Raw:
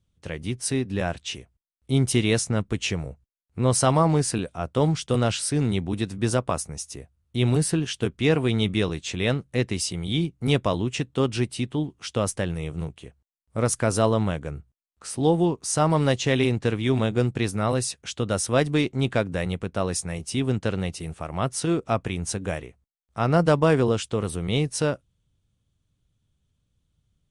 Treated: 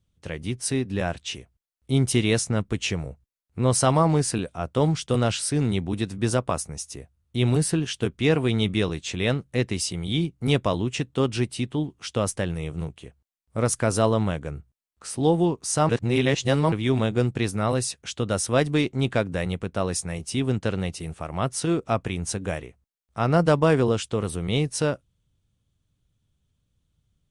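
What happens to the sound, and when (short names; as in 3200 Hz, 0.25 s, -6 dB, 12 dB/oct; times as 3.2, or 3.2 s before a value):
15.89–16.72 reverse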